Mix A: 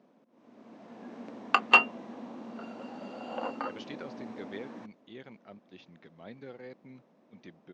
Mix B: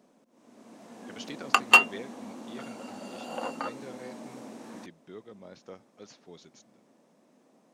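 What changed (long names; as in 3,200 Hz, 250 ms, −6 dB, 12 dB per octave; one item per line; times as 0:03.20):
speech: entry −2.60 s
master: remove high-frequency loss of the air 200 metres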